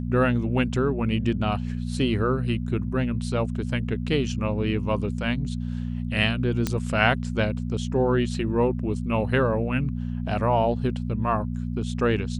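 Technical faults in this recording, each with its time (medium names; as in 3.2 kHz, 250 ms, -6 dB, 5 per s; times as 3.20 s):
hum 60 Hz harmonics 4 -29 dBFS
6.67 s: pop -10 dBFS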